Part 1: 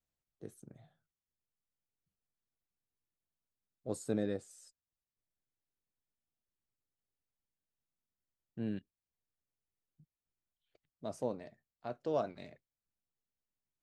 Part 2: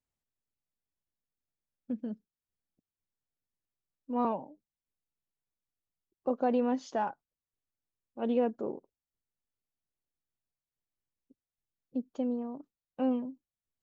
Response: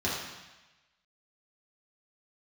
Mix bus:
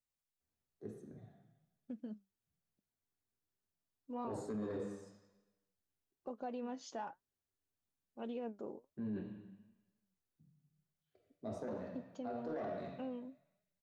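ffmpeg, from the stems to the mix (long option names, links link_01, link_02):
-filter_complex "[0:a]lowpass=frequency=1300:poles=1,asoftclip=type=tanh:threshold=-29dB,adelay=400,volume=-2.5dB,asplit=2[link_01][link_02];[link_02]volume=-4dB[link_03];[1:a]acompressor=threshold=-31dB:ratio=5,volume=-4dB[link_04];[2:a]atrim=start_sample=2205[link_05];[link_03][link_05]afir=irnorm=-1:irlink=0[link_06];[link_01][link_04][link_06]amix=inputs=3:normalize=0,highshelf=frequency=2700:gain=7.5,flanger=delay=4.7:depth=5.6:regen=73:speed=1.1:shape=sinusoidal,alimiter=level_in=10dB:limit=-24dB:level=0:latency=1:release=13,volume=-10dB"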